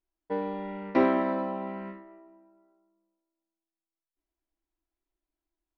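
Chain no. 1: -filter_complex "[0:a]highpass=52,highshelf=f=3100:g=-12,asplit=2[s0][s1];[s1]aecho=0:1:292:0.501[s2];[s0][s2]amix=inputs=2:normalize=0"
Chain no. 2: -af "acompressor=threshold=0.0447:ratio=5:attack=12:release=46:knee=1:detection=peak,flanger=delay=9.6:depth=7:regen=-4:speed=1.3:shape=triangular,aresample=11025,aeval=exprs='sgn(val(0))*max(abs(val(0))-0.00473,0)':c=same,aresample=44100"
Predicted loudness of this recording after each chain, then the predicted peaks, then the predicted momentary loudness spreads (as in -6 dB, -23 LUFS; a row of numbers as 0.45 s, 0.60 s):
-29.5 LUFS, -37.0 LUFS; -12.0 dBFS, -18.0 dBFS; 17 LU, 12 LU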